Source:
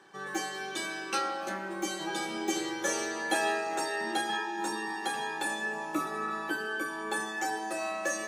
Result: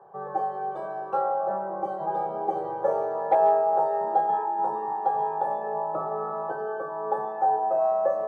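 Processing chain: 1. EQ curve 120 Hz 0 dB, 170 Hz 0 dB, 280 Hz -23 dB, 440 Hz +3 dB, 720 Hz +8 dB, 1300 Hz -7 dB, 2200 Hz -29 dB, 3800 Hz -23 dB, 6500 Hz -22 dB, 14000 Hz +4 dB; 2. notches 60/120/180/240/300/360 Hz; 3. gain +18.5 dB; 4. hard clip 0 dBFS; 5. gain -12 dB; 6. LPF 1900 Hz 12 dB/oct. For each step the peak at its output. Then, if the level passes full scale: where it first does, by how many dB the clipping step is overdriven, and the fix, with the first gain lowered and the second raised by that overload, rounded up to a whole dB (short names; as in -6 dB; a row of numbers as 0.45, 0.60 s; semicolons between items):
-15.0, -15.0, +3.5, 0.0, -12.0, -11.5 dBFS; step 3, 3.5 dB; step 3 +14.5 dB, step 5 -8 dB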